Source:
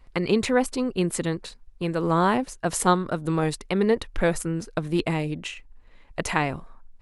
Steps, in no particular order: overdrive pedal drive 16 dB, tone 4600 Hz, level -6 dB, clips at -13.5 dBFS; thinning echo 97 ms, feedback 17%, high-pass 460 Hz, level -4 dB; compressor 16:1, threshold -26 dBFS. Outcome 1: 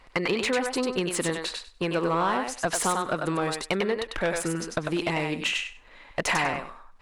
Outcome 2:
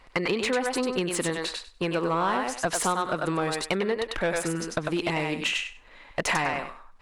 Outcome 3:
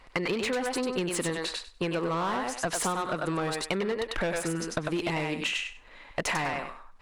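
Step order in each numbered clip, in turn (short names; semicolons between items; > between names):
compressor > thinning echo > overdrive pedal; thinning echo > compressor > overdrive pedal; thinning echo > overdrive pedal > compressor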